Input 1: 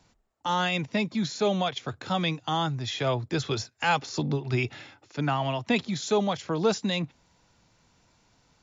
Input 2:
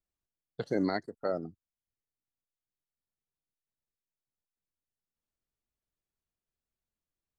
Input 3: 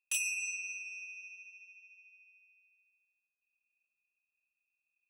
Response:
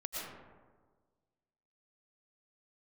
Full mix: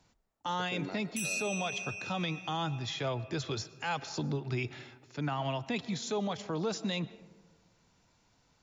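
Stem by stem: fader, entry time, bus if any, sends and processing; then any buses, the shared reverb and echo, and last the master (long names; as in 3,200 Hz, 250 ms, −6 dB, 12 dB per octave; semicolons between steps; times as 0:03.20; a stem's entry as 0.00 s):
−5.5 dB, 0.00 s, send −19 dB, no processing
−6.0 dB, 0.00 s, send −16.5 dB, automatic ducking −12 dB, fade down 1.70 s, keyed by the first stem
+2.5 dB, 1.05 s, no send, no processing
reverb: on, RT60 1.5 s, pre-delay 75 ms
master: brickwall limiter −25 dBFS, peak gain reduction 10.5 dB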